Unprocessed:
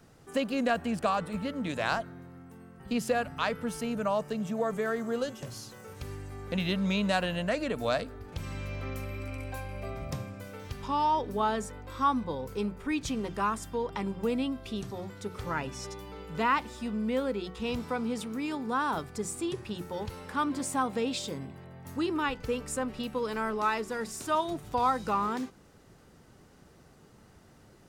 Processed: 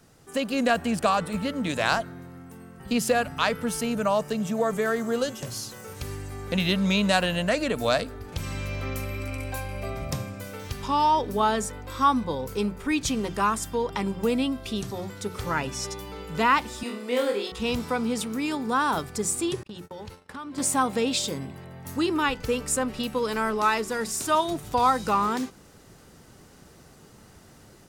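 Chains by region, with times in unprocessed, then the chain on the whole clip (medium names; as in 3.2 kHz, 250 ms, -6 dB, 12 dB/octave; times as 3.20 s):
16.83–17.52 s: high-pass 300 Hz 24 dB/octave + flutter echo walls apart 4.2 m, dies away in 0.4 s
19.63–20.58 s: gate -42 dBFS, range -38 dB + treble shelf 8.3 kHz -8.5 dB + compression 4:1, threshold -42 dBFS
whole clip: peaking EQ 13 kHz +6.5 dB 2.4 oct; level rider gain up to 5 dB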